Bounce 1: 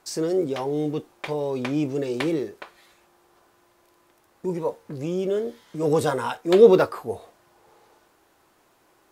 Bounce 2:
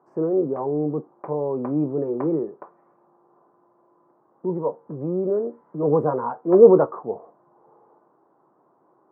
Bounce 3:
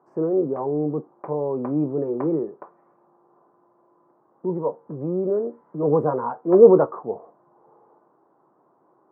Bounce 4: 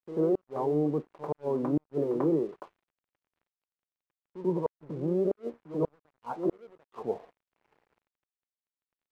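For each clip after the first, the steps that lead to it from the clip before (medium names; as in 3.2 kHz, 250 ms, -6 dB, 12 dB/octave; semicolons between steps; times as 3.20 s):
elliptic band-pass 140–1100 Hz, stop band 50 dB; trim +2 dB
no audible change
pre-echo 92 ms -13 dB; inverted gate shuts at -14 dBFS, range -35 dB; crossover distortion -52.5 dBFS; trim -3 dB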